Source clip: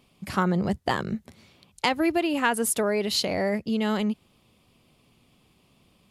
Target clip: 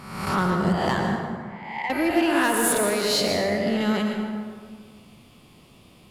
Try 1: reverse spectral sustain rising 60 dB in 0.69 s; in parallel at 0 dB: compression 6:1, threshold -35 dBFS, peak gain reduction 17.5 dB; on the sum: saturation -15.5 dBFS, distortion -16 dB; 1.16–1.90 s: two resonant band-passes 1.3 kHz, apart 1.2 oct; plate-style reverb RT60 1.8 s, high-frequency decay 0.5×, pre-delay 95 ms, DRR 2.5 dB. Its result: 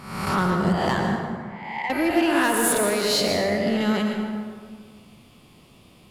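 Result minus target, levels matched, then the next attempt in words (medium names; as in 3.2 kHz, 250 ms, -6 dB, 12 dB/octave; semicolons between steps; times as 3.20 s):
compression: peak gain reduction -8.5 dB
reverse spectral sustain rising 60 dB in 0.69 s; in parallel at 0 dB: compression 6:1, threshold -45 dBFS, peak gain reduction 26 dB; on the sum: saturation -15.5 dBFS, distortion -17 dB; 1.16–1.90 s: two resonant band-passes 1.3 kHz, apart 1.2 oct; plate-style reverb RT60 1.8 s, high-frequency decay 0.5×, pre-delay 95 ms, DRR 2.5 dB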